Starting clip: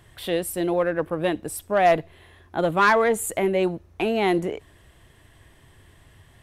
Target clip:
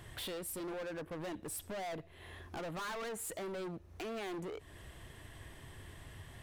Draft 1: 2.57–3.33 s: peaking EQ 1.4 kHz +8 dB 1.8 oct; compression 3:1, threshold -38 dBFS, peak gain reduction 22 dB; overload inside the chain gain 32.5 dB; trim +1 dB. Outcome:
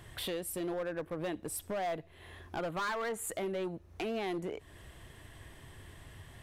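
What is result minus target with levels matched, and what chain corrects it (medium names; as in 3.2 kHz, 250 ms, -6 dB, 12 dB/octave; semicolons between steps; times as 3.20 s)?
overload inside the chain: distortion -7 dB
2.57–3.33 s: peaking EQ 1.4 kHz +8 dB 1.8 oct; compression 3:1, threshold -38 dBFS, peak gain reduction 22 dB; overload inside the chain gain 40.5 dB; trim +1 dB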